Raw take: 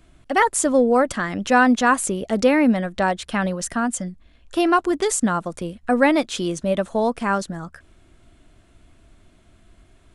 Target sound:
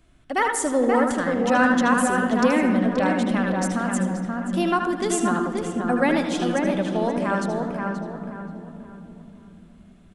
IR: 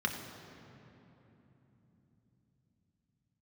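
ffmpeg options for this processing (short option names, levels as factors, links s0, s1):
-filter_complex "[0:a]asplit=2[s0][s1];[s1]adelay=529,lowpass=f=2000:p=1,volume=0.668,asplit=2[s2][s3];[s3]adelay=529,lowpass=f=2000:p=1,volume=0.34,asplit=2[s4][s5];[s5]adelay=529,lowpass=f=2000:p=1,volume=0.34,asplit=2[s6][s7];[s7]adelay=529,lowpass=f=2000:p=1,volume=0.34[s8];[s0][s2][s4][s6][s8]amix=inputs=5:normalize=0,asplit=2[s9][s10];[1:a]atrim=start_sample=2205,adelay=77[s11];[s10][s11]afir=irnorm=-1:irlink=0,volume=0.316[s12];[s9][s12]amix=inputs=2:normalize=0,volume=0.562"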